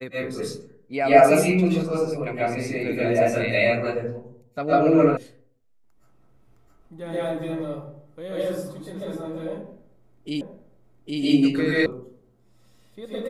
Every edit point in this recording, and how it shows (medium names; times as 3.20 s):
5.17 s: sound stops dead
10.41 s: repeat of the last 0.81 s
11.86 s: sound stops dead